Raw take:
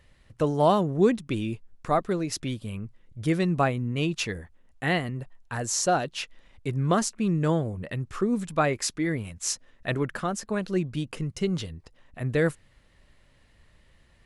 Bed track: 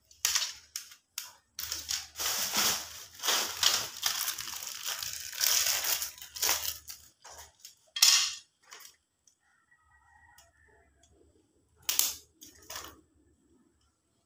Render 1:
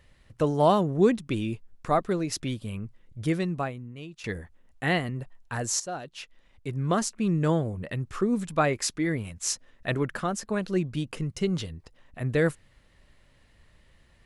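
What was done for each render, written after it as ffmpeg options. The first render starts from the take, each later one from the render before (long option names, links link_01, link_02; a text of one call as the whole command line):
ffmpeg -i in.wav -filter_complex "[0:a]asplit=3[link_01][link_02][link_03];[link_01]atrim=end=4.24,asetpts=PTS-STARTPTS,afade=type=out:start_time=3.2:duration=1.04:curve=qua:silence=0.149624[link_04];[link_02]atrim=start=4.24:end=5.8,asetpts=PTS-STARTPTS,afade=type=in:duration=0.004:curve=hsin:silence=0.149624,afade=type=out:start_time=1.556:duration=0.004:curve=hsin:silence=0.199526[link_05];[link_03]atrim=start=5.8,asetpts=PTS-STARTPTS,afade=type=in:duration=1.55:silence=0.199526[link_06];[link_04][link_05][link_06]concat=n=3:v=0:a=1" out.wav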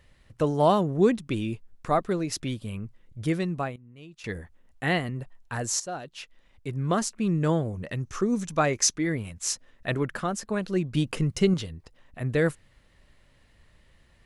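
ffmpeg -i in.wav -filter_complex "[0:a]asettb=1/sr,asplit=3[link_01][link_02][link_03];[link_01]atrim=end=7.734[link_04];[link_02]atrim=start=7.73:end=8.95,asetpts=PTS-STARTPTS,afade=type=in:duration=0.004:curve=qsin,afade=type=out:start_time=1.216:duration=0.004:curve=qsin,equalizer=frequency=6100:width_type=o:width=0.32:gain=13.5[link_05];[link_03]atrim=start=8.946[link_06];[link_04][link_05]acrossfade=duration=0.004:curve1=hsin:curve2=qsin[link_07];[link_07][link_06]acrossfade=duration=0.004:curve1=qsin:curve2=hsin,asettb=1/sr,asplit=3[link_08][link_09][link_10];[link_08]atrim=end=10.944[link_11];[link_09]atrim=start=10.94:end=11.54,asetpts=PTS-STARTPTS,afade=type=in:duration=0.004:curve=qsin,afade=type=out:start_time=0.596:duration=0.004:curve=qsin,acontrast=33[link_12];[link_10]atrim=start=11.536[link_13];[link_11][link_12]acrossfade=duration=0.004:curve1=hsin:curve2=qsin[link_14];[link_14][link_13]acrossfade=duration=0.004:curve1=qsin:curve2=hsin,asplit=2[link_15][link_16];[link_15]atrim=end=3.76,asetpts=PTS-STARTPTS,afade=type=out:start_time=3.756:duration=0.004:curve=hsin:silence=0.177828[link_17];[link_16]atrim=start=3.76,asetpts=PTS-STARTPTS,afade=type=in:duration=0.62:silence=0.177828[link_18];[link_17][link_18]concat=n=2:v=0:a=1" out.wav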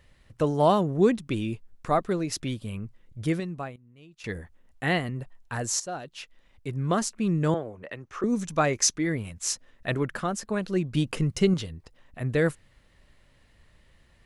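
ffmpeg -i in.wav -filter_complex "[0:a]asettb=1/sr,asplit=3[link_01][link_02][link_03];[link_01]atrim=end=7.544[link_04];[link_02]atrim=start=7.54:end=8.24,asetpts=PTS-STARTPTS,afade=type=in:duration=0.004:curve=qsin,afade=type=out:start_time=0.696:duration=0.004:curve=qsin,acrossover=split=330 3300:gain=0.178 1 0.2[link_05][link_06][link_07];[link_05][link_06][link_07]amix=inputs=3:normalize=0[link_08];[link_03]atrim=start=8.236[link_09];[link_04][link_08]acrossfade=duration=0.004:curve1=hsin:curve2=qsin[link_10];[link_10][link_09]acrossfade=duration=0.004:curve1=qsin:curve2=hsin,asplit=3[link_11][link_12][link_13];[link_11]atrim=end=3.402[link_14];[link_12]atrim=start=3.398:end=4.202,asetpts=PTS-STARTPTS,volume=-5dB[link_15];[link_13]atrim=start=4.198[link_16];[link_14][link_15]acrossfade=duration=0.004:curve1=hsin:curve2=hsin[link_17];[link_17][link_16]acrossfade=duration=0.004:curve1=hsin:curve2=hsin" out.wav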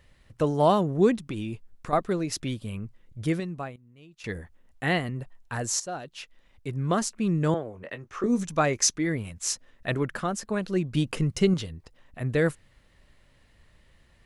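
ffmpeg -i in.wav -filter_complex "[0:a]asettb=1/sr,asplit=3[link_01][link_02][link_03];[link_01]atrim=end=1.254[link_04];[link_02]atrim=start=1.25:end=1.93,asetpts=PTS-STARTPTS,afade=type=in:duration=0.004:curve=qsin,afade=type=out:start_time=0.676:duration=0.004:curve=qsin,acompressor=threshold=-28dB:ratio=6:attack=3.2:release=140:knee=1:detection=peak[link_05];[link_03]atrim=start=1.926[link_06];[link_04][link_05]acrossfade=duration=0.004:curve1=hsin:curve2=qsin[link_07];[link_07][link_06]acrossfade=duration=0.004:curve1=qsin:curve2=hsin,asettb=1/sr,asplit=3[link_08][link_09][link_10];[link_08]atrim=end=7.734[link_11];[link_09]atrim=start=7.73:end=8.43,asetpts=PTS-STARTPTS,afade=type=in:duration=0.004:curve=qsin,afade=type=out:start_time=0.696:duration=0.004:curve=qsin,asplit=2[link_12][link_13];[link_13]adelay=21,volume=-9dB[link_14];[link_12][link_14]amix=inputs=2:normalize=0,atrim=end_sample=30870[link_15];[link_10]atrim=start=8.426[link_16];[link_11][link_15]acrossfade=duration=0.004:curve1=hsin:curve2=qsin[link_17];[link_17][link_16]acrossfade=duration=0.004:curve1=qsin:curve2=hsin" out.wav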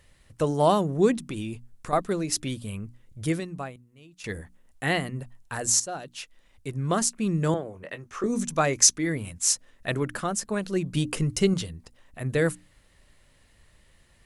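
ffmpeg -i in.wav -af "equalizer=frequency=9500:width=0.74:gain=9,bandreject=frequency=60:width_type=h:width=6,bandreject=frequency=120:width_type=h:width=6,bandreject=frequency=180:width_type=h:width=6,bandreject=frequency=240:width_type=h:width=6,bandreject=frequency=300:width_type=h:width=6" out.wav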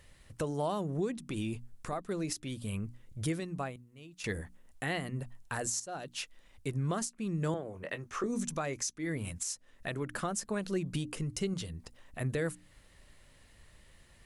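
ffmpeg -i in.wav -af "acompressor=threshold=-32dB:ratio=2,alimiter=limit=-23.5dB:level=0:latency=1:release=428" out.wav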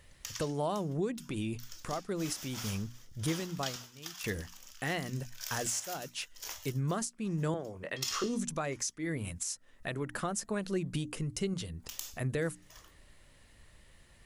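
ffmpeg -i in.wav -i bed.wav -filter_complex "[1:a]volume=-14.5dB[link_01];[0:a][link_01]amix=inputs=2:normalize=0" out.wav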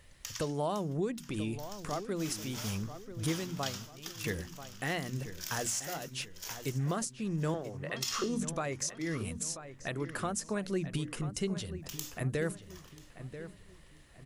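ffmpeg -i in.wav -filter_complex "[0:a]asplit=2[link_01][link_02];[link_02]adelay=987,lowpass=frequency=2800:poles=1,volume=-11.5dB,asplit=2[link_03][link_04];[link_04]adelay=987,lowpass=frequency=2800:poles=1,volume=0.39,asplit=2[link_05][link_06];[link_06]adelay=987,lowpass=frequency=2800:poles=1,volume=0.39,asplit=2[link_07][link_08];[link_08]adelay=987,lowpass=frequency=2800:poles=1,volume=0.39[link_09];[link_01][link_03][link_05][link_07][link_09]amix=inputs=5:normalize=0" out.wav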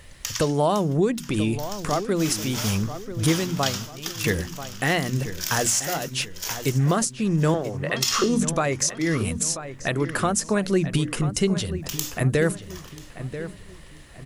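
ffmpeg -i in.wav -af "volume=12dB" out.wav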